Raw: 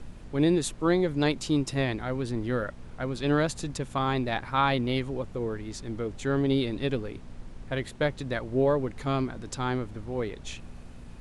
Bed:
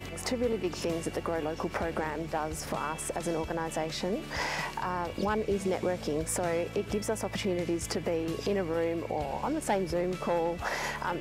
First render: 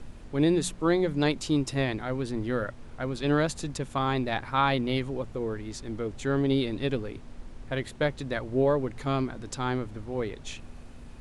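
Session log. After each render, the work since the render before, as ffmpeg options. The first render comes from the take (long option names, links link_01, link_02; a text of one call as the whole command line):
ffmpeg -i in.wav -af "bandreject=frequency=60:width_type=h:width=4,bandreject=frequency=120:width_type=h:width=4,bandreject=frequency=180:width_type=h:width=4" out.wav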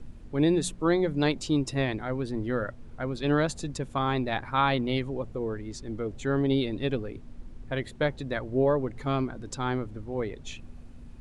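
ffmpeg -i in.wav -af "afftdn=noise_reduction=8:noise_floor=-45" out.wav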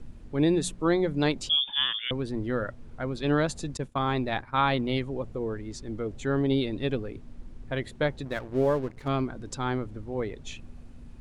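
ffmpeg -i in.wav -filter_complex "[0:a]asettb=1/sr,asplit=3[link_01][link_02][link_03];[link_01]atrim=end=1.494[link_04];[link_02]atrim=start=1.49:end=2.11,asetpts=PTS-STARTPTS,afade=type=in:duration=0.004:curve=qsin,afade=type=out:start_time=0.616:duration=0.004:curve=qsin,lowpass=frequency=3100:width_type=q:width=0.5098,lowpass=frequency=3100:width_type=q:width=0.6013,lowpass=frequency=3100:width_type=q:width=0.9,lowpass=frequency=3100:width_type=q:width=2.563,afreqshift=-3600[link_05];[link_03]atrim=start=2.106[link_06];[link_04][link_05]acrossfade=duration=0.004:curve1=hsin:curve2=qsin[link_07];[link_07][link_06]acrossfade=duration=0.004:curve1=qsin:curve2=hsin,asettb=1/sr,asplit=3[link_08][link_09][link_10];[link_08]atrim=end=3.774[link_11];[link_09]atrim=start=3.77:end=5.11,asetpts=PTS-STARTPTS,afade=type=in:duration=0.004:curve=qsin,afade=type=out:start_time=1.336:duration=0.004:curve=qsin,agate=range=-33dB:threshold=-34dB:ratio=3:release=100:detection=peak[link_12];[link_10]atrim=start=5.106[link_13];[link_11][link_12]acrossfade=duration=0.004:curve1=hsin:curve2=qsin[link_14];[link_14][link_13]acrossfade=duration=0.004:curve1=qsin:curve2=hsin,asettb=1/sr,asplit=3[link_15][link_16][link_17];[link_15]atrim=end=8.254[link_18];[link_16]atrim=start=8.25:end=9.08,asetpts=PTS-STARTPTS,afade=type=in:duration=0.004:curve=qsin,afade=type=out:start_time=0.826:duration=0.004:curve=qsin,aeval=exprs='sgn(val(0))*max(abs(val(0))-0.00708,0)':channel_layout=same[link_19];[link_17]atrim=start=9.076[link_20];[link_18][link_19]acrossfade=duration=0.004:curve1=hsin:curve2=qsin[link_21];[link_21][link_20]acrossfade=duration=0.004:curve1=qsin:curve2=hsin" out.wav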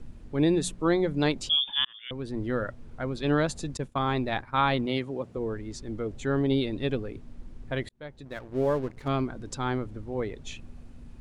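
ffmpeg -i in.wav -filter_complex "[0:a]asettb=1/sr,asplit=3[link_01][link_02][link_03];[link_01]atrim=end=4.864[link_04];[link_02]atrim=start=4.86:end=5.37,asetpts=PTS-STARTPTS,afade=type=in:duration=0.004:curve=qsin,afade=type=out:start_time=0.506:duration=0.004:curve=qsin,highpass=140[link_05];[link_03]atrim=start=5.366[link_06];[link_04][link_05]acrossfade=duration=0.004:curve1=hsin:curve2=qsin[link_07];[link_07][link_06]acrossfade=duration=0.004:curve1=qsin:curve2=hsin,asplit=3[link_08][link_09][link_10];[link_08]atrim=end=1.85,asetpts=PTS-STARTPTS,afade=type=out:start_time=1.846:duration=0.004:curve=hsin[link_11];[link_09]atrim=start=1.85:end=7.89,asetpts=PTS-STARTPTS,afade=type=in:duration=0.58,afade=type=out:start_time=6.036:duration=0.004:curve=hsin[link_12];[link_10]atrim=start=7.89,asetpts=PTS-STARTPTS,afade=type=in:duration=0.92[link_13];[link_11][link_12][link_13]concat=n=3:v=0:a=1" out.wav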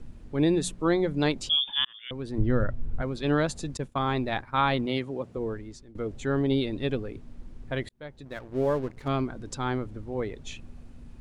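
ffmpeg -i in.wav -filter_complex "[0:a]asettb=1/sr,asplit=3[link_01][link_02][link_03];[link_01]atrim=end=2.384[link_04];[link_02]atrim=start=2.38:end=3.02,asetpts=PTS-STARTPTS,afade=type=in:duration=0.004:curve=qsin,afade=type=out:start_time=0.636:duration=0.004:curve=qsin,aemphasis=mode=reproduction:type=bsi[link_05];[link_03]atrim=start=3.016[link_06];[link_04][link_05]acrossfade=duration=0.004:curve1=hsin:curve2=qsin[link_07];[link_07][link_06]acrossfade=duration=0.004:curve1=qsin:curve2=hsin,asplit=2[link_08][link_09];[link_08]atrim=end=5.95,asetpts=PTS-STARTPTS,afade=type=out:start_time=5.49:duration=0.46:silence=0.0749894[link_10];[link_09]atrim=start=5.95,asetpts=PTS-STARTPTS,afade=type=in:duration=0.004:curve=hsin:silence=0.0749894[link_11];[link_10][link_11]concat=n=2:v=0:a=1" out.wav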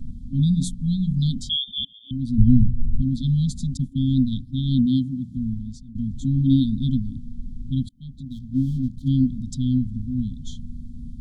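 ffmpeg -i in.wav -af "afftfilt=real='re*(1-between(b*sr/4096,270,3100))':imag='im*(1-between(b*sr/4096,270,3100))':win_size=4096:overlap=0.75,lowshelf=frequency=370:width_type=q:width=1.5:gain=10" out.wav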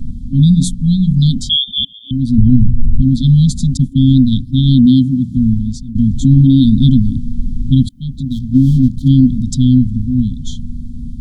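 ffmpeg -i in.wav -af "dynaudnorm=framelen=370:gausssize=13:maxgain=7dB,alimiter=level_in=10.5dB:limit=-1dB:release=50:level=0:latency=1" out.wav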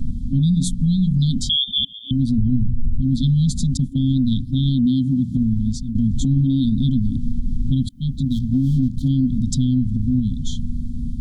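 ffmpeg -i in.wav -af "acompressor=threshold=-15dB:ratio=2,alimiter=limit=-11dB:level=0:latency=1:release=73" out.wav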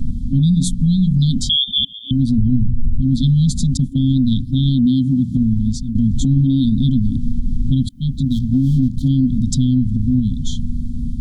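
ffmpeg -i in.wav -af "volume=3dB" out.wav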